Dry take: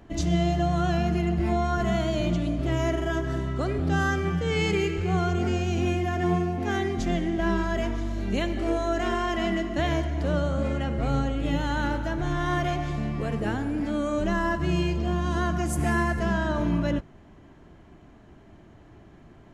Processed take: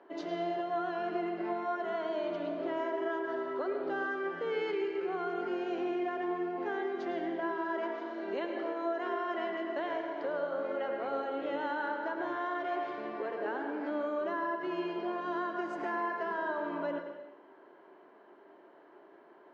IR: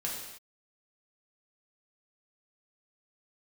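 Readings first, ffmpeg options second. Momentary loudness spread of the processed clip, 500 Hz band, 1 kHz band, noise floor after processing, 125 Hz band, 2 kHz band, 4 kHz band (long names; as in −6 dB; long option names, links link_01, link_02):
2 LU, −4.5 dB, −4.5 dB, −58 dBFS, −32.0 dB, −7.0 dB, −13.5 dB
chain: -filter_complex "[0:a]highpass=frequency=330:width=0.5412,highpass=frequency=330:width=1.3066,equalizer=frequency=390:width_type=q:width=4:gain=7,equalizer=frequency=570:width_type=q:width=4:gain=5,equalizer=frequency=960:width_type=q:width=4:gain=8,equalizer=frequency=1500:width_type=q:width=4:gain=5,equalizer=frequency=2500:width_type=q:width=4:gain=-5,equalizer=frequency=3500:width_type=q:width=4:gain=-5,lowpass=frequency=3900:width=0.5412,lowpass=frequency=3900:width=1.3066,acompressor=threshold=-26dB:ratio=6,asplit=2[link_01][link_02];[1:a]atrim=start_sample=2205,lowpass=6300,adelay=104[link_03];[link_02][link_03]afir=irnorm=-1:irlink=0,volume=-8.5dB[link_04];[link_01][link_04]amix=inputs=2:normalize=0,volume=-6dB"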